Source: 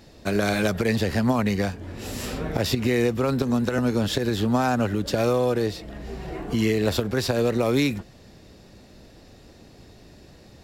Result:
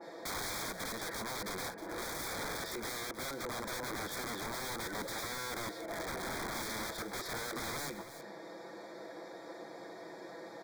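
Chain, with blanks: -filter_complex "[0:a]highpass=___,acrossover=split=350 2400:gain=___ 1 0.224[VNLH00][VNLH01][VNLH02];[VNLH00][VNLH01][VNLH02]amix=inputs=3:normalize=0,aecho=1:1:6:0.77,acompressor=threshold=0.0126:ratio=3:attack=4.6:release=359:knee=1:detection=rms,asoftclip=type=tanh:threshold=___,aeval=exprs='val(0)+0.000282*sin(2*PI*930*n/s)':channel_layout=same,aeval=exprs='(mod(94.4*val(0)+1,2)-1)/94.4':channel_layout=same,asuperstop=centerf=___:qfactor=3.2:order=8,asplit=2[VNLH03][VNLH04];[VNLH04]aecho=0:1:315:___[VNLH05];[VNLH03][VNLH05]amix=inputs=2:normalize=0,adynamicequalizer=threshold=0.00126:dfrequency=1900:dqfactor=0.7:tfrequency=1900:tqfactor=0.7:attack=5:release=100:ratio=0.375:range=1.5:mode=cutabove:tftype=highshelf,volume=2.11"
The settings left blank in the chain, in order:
150, 0.0708, 0.0282, 2800, 0.237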